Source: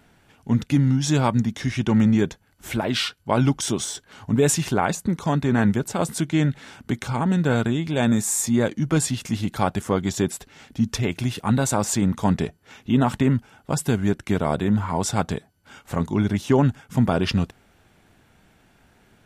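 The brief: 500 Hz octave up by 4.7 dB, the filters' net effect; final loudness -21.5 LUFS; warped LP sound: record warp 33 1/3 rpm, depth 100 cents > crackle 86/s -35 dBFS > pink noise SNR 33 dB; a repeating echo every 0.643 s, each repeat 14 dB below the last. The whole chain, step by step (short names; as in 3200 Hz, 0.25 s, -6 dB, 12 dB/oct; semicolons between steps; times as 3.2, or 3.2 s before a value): bell 500 Hz +6 dB; feedback echo 0.643 s, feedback 20%, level -14 dB; record warp 33 1/3 rpm, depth 100 cents; crackle 86/s -35 dBFS; pink noise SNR 33 dB; gain -0.5 dB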